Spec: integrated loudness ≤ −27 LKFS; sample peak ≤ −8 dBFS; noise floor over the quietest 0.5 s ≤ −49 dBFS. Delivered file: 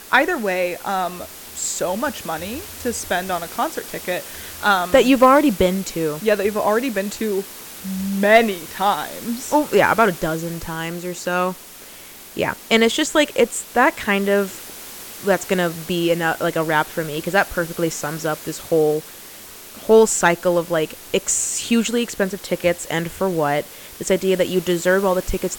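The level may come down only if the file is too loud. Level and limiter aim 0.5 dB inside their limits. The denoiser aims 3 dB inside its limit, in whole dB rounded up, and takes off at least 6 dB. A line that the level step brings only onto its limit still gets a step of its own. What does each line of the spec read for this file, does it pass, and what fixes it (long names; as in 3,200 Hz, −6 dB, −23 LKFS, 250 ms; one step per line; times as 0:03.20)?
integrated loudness −19.5 LKFS: out of spec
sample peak −2.5 dBFS: out of spec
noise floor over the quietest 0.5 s −40 dBFS: out of spec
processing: broadband denoise 6 dB, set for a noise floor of −40 dBFS
level −8 dB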